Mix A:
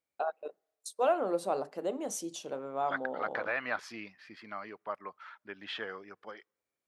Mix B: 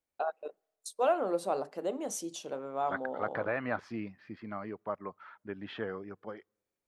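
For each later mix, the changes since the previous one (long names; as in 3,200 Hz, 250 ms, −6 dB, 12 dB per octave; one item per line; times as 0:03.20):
second voice: add spectral tilt −4.5 dB per octave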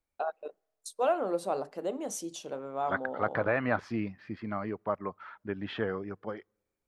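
second voice +4.5 dB
master: add low-shelf EQ 81 Hz +10 dB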